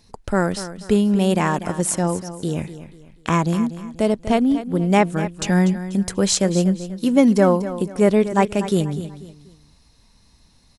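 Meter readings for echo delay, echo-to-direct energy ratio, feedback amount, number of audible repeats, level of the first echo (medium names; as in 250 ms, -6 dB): 243 ms, -12.5 dB, 34%, 3, -13.0 dB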